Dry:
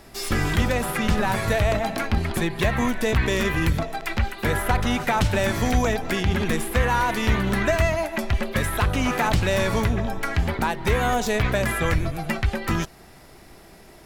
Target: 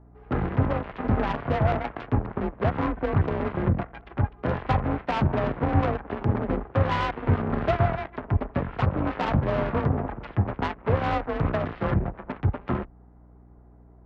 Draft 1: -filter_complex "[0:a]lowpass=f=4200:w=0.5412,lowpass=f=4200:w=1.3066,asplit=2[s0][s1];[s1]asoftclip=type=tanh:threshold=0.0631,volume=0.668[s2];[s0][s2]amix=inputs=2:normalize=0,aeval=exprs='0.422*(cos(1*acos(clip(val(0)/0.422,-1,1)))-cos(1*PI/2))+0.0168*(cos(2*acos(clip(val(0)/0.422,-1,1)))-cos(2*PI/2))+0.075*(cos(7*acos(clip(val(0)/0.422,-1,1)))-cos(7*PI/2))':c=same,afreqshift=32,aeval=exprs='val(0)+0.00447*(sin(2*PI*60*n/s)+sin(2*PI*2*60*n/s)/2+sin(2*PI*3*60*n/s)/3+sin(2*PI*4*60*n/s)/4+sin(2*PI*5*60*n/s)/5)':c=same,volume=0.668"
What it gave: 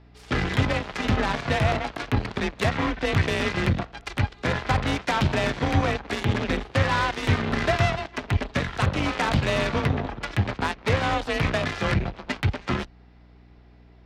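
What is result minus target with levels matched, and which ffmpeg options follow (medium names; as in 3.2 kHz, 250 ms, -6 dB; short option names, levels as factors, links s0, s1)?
4 kHz band +11.0 dB
-filter_complex "[0:a]lowpass=f=1200:w=0.5412,lowpass=f=1200:w=1.3066,asplit=2[s0][s1];[s1]asoftclip=type=tanh:threshold=0.0631,volume=0.668[s2];[s0][s2]amix=inputs=2:normalize=0,aeval=exprs='0.422*(cos(1*acos(clip(val(0)/0.422,-1,1)))-cos(1*PI/2))+0.0168*(cos(2*acos(clip(val(0)/0.422,-1,1)))-cos(2*PI/2))+0.075*(cos(7*acos(clip(val(0)/0.422,-1,1)))-cos(7*PI/2))':c=same,afreqshift=32,aeval=exprs='val(0)+0.00447*(sin(2*PI*60*n/s)+sin(2*PI*2*60*n/s)/2+sin(2*PI*3*60*n/s)/3+sin(2*PI*4*60*n/s)/4+sin(2*PI*5*60*n/s)/5)':c=same,volume=0.668"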